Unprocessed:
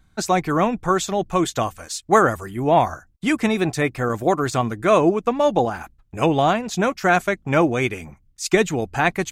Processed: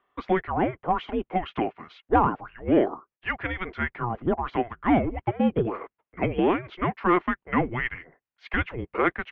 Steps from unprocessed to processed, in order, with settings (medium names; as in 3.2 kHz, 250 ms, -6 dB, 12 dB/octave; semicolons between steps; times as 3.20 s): saturation -5 dBFS, distortion -25 dB; mistuned SSB -360 Hz 540–3100 Hz; trim -2 dB